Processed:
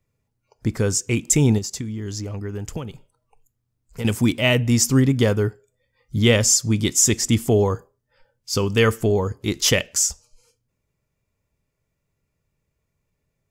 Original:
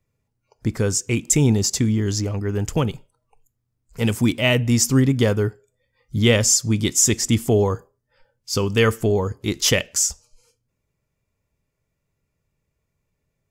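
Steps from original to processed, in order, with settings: 1.58–4.05 compressor 10:1, threshold -26 dBFS, peak gain reduction 12 dB

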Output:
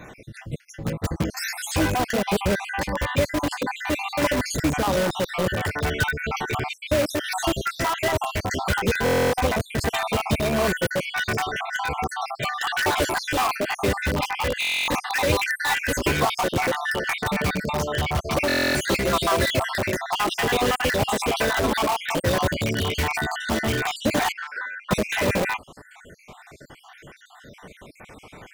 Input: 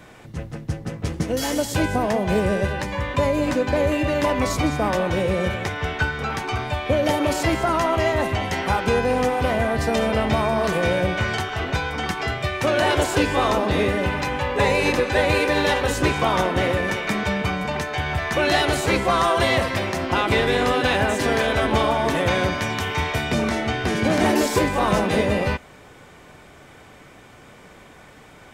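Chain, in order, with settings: random spectral dropouts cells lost 61%; 24.32–24.91 ladder band-pass 1500 Hz, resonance 75%; in parallel at -4.5 dB: wrapped overs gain 20.5 dB; on the sum: stuck buffer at 9.04/14.6/18.47, samples 1024, times 11

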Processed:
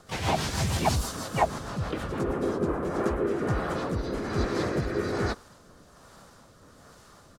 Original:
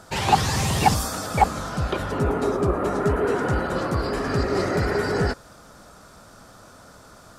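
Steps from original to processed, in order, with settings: rotary speaker horn 6.3 Hz, later 1.2 Hz, at 2.31; harmoniser -3 st 0 dB, +4 st -6 dB; gain -6.5 dB

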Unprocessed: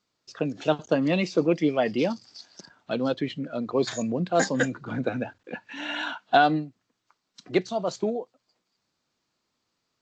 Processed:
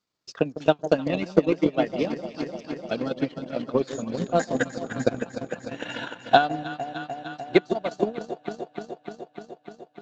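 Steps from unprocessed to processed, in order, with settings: echo with dull and thin repeats by turns 0.15 s, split 800 Hz, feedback 87%, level -6 dB; transient shaper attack +11 dB, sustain -11 dB; gain -5.5 dB

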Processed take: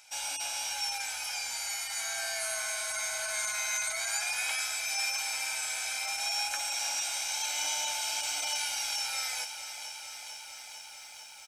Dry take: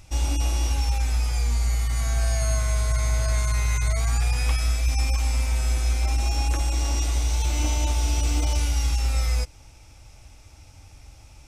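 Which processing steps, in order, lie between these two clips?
HPF 1200 Hz 12 dB/oct; comb 1.3 ms, depth 80%; lo-fi delay 0.448 s, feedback 80%, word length 10-bit, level -11 dB; gain -1 dB

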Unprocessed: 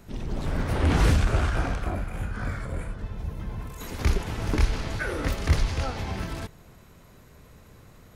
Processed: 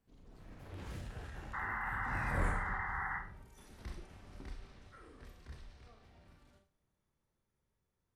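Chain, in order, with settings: Doppler pass-by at 2.43, 45 m/s, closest 5.4 m; painted sound noise, 1.53–3.19, 730–2100 Hz -38 dBFS; Schroeder reverb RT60 0.38 s, combs from 29 ms, DRR 5 dB; gain -2.5 dB

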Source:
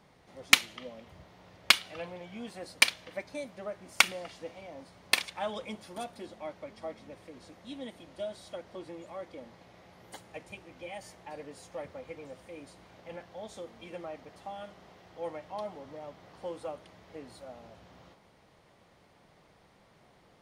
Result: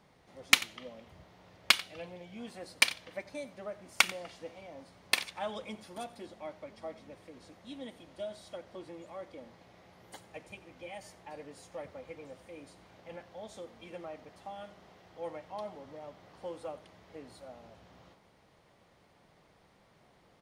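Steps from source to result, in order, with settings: 1.84–2.38 bell 1200 Hz -6 dB 1.3 oct; echo 90 ms -19 dB; gain -2.5 dB

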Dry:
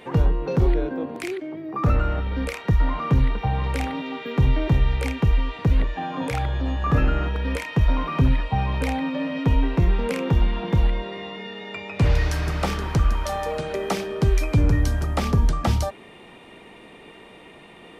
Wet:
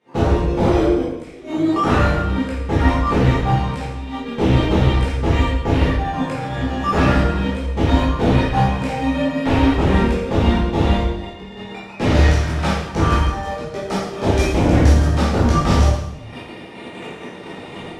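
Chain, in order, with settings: recorder AGC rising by 50 dB/s; gate -20 dBFS, range -29 dB; HPF 73 Hz 24 dB/oct; high shelf 4500 Hz +11 dB; in parallel at -5 dB: decimation with a swept rate 11×, swing 100% 0.29 Hz; on the sum: sine folder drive 12 dB, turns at -4.5 dBFS; air absorption 75 m; reverb RT60 0.95 s, pre-delay 12 ms, DRR -8 dB; gain -15 dB

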